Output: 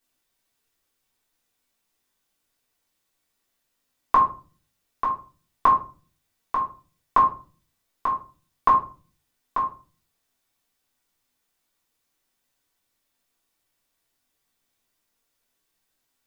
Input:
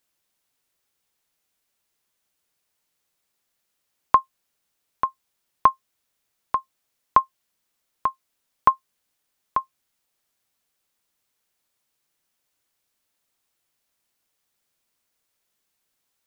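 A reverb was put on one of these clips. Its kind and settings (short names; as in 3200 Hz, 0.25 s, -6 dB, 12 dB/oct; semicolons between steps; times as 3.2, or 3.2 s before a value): shoebox room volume 230 m³, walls furnished, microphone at 3.5 m; gain -5.5 dB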